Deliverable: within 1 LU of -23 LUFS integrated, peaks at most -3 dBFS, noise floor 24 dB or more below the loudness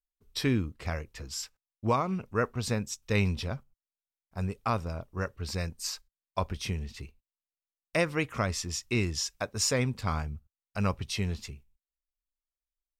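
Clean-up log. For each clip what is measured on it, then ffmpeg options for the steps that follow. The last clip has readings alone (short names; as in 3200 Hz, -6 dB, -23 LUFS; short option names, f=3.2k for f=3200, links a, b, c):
loudness -32.0 LUFS; peak -15.5 dBFS; loudness target -23.0 LUFS
-> -af "volume=9dB"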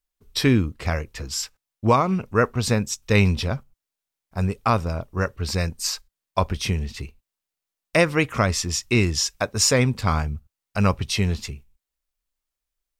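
loudness -23.0 LUFS; peak -6.5 dBFS; noise floor -87 dBFS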